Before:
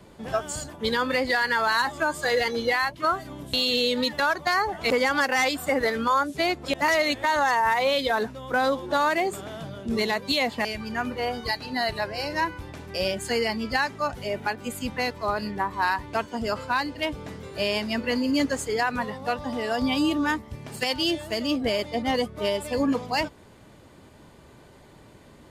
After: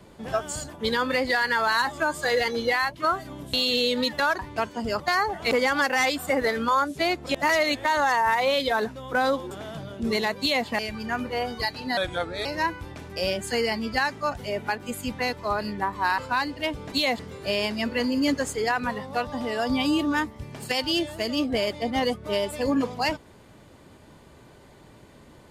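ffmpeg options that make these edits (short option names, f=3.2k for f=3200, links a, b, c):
-filter_complex "[0:a]asplit=9[a][b][c][d][e][f][g][h][i];[a]atrim=end=4.392[j];[b]atrim=start=15.958:end=16.572[k];[c]atrim=start=4.388:end=8.902[l];[d]atrim=start=9.368:end=11.834[m];[e]atrim=start=11.83:end=12.23,asetpts=PTS-STARTPTS,asetrate=36603,aresample=44100,atrim=end_sample=21253,asetpts=PTS-STARTPTS[n];[f]atrim=start=12.226:end=15.962[o];[g]atrim=start=16.568:end=17.312[p];[h]atrim=start=10.258:end=10.532[q];[i]atrim=start=17.308[r];[j][k]acrossfade=d=0.004:c1=hsin:c2=hsin[s];[s][l]acrossfade=d=0.004:c1=hsin:c2=hsin[t];[t][m]acrossfade=d=0.004:c1=hsin:c2=hsin[u];[u][n]acrossfade=d=0.004:c1=hsin:c2=hsin[v];[v][o]acrossfade=d=0.004:c1=hsin:c2=hsin[w];[w][p]acrossfade=d=0.004:c1=hsin:c2=hsin[x];[x][q]acrossfade=d=0.004:c1=hsin:c2=hsin[y];[y][r]acrossfade=d=0.004:c1=hsin:c2=hsin"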